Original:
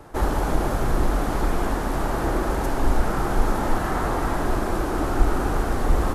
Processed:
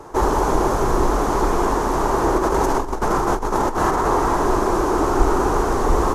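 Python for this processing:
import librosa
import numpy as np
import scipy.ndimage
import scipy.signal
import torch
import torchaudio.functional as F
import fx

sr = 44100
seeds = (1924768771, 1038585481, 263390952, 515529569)

y = fx.graphic_eq_15(x, sr, hz=(400, 1000, 6300), db=(10, 11, 10))
y = fx.over_compress(y, sr, threshold_db=-19.0, ratio=-0.5, at=(2.38, 4.08))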